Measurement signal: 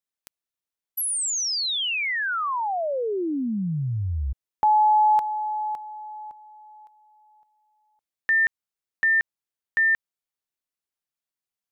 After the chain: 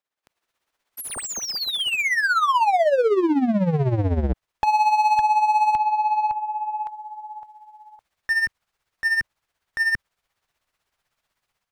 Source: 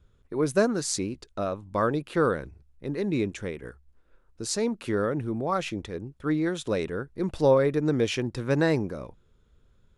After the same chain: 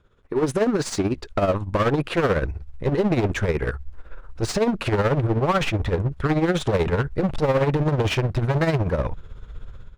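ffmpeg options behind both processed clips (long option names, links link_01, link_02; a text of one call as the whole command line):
ffmpeg -i in.wav -filter_complex "[0:a]asubboost=boost=6:cutoff=110,dynaudnorm=framelen=200:gausssize=3:maxgain=13.5dB,volume=18.5dB,asoftclip=hard,volume=-18.5dB,asplit=2[link_01][link_02];[link_02]highpass=frequency=720:poles=1,volume=14dB,asoftclip=type=tanh:threshold=-18dB[link_03];[link_01][link_03]amix=inputs=2:normalize=0,lowpass=frequency=1300:poles=1,volume=-6dB,tremolo=f=16:d=0.63,volume=5.5dB" out.wav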